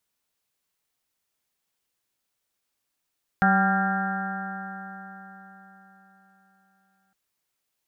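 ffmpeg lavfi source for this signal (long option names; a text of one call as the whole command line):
ffmpeg -f lavfi -i "aevalsrc='0.1*pow(10,-3*t/4.21)*sin(2*PI*191.15*t)+0.0119*pow(10,-3*t/4.21)*sin(2*PI*383.22*t)+0.015*pow(10,-3*t/4.21)*sin(2*PI*577.11*t)+0.0944*pow(10,-3*t/4.21)*sin(2*PI*773.72*t)+0.01*pow(10,-3*t/4.21)*sin(2*PI*973.91*t)+0.0168*pow(10,-3*t/4.21)*sin(2*PI*1178.54*t)+0.0794*pow(10,-3*t/4.21)*sin(2*PI*1388.42*t)+0.0631*pow(10,-3*t/4.21)*sin(2*PI*1604.33*t)+0.02*pow(10,-3*t/4.21)*sin(2*PI*1827*t)':duration=3.71:sample_rate=44100" out.wav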